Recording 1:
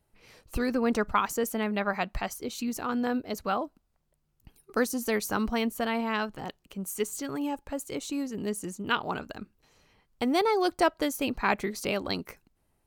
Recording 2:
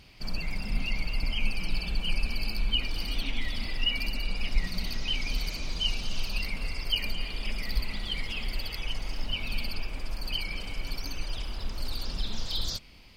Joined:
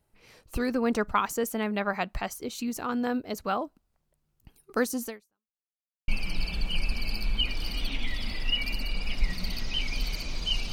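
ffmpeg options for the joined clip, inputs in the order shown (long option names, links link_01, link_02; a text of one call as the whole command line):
ffmpeg -i cue0.wav -i cue1.wav -filter_complex "[0:a]apad=whole_dur=10.72,atrim=end=10.72,asplit=2[link_01][link_02];[link_01]atrim=end=5.6,asetpts=PTS-STARTPTS,afade=type=out:start_time=5.05:duration=0.55:curve=exp[link_03];[link_02]atrim=start=5.6:end=6.08,asetpts=PTS-STARTPTS,volume=0[link_04];[1:a]atrim=start=1.42:end=6.06,asetpts=PTS-STARTPTS,afade=type=in:duration=0.004:curve=hsin[link_05];[link_03][link_04][link_05]concat=n=3:v=0:a=1" out.wav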